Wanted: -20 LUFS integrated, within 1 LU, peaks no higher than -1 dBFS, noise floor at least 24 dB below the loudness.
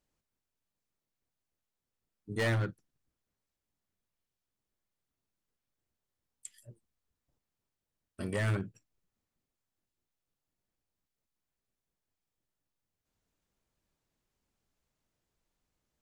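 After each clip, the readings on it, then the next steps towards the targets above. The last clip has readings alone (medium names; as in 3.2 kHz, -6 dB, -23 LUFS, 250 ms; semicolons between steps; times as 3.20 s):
clipped samples 0.5%; clipping level -26.5 dBFS; loudness -34.0 LUFS; peak level -26.5 dBFS; loudness target -20.0 LUFS
-> clip repair -26.5 dBFS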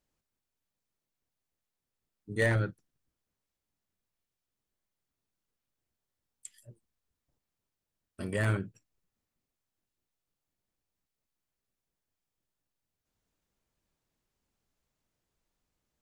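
clipped samples 0.0%; loudness -31.5 LUFS; peak level -17.5 dBFS; loudness target -20.0 LUFS
-> trim +11.5 dB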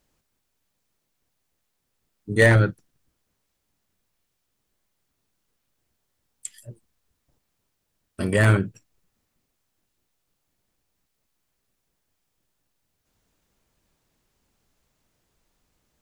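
loudness -20.0 LUFS; peak level -6.0 dBFS; noise floor -77 dBFS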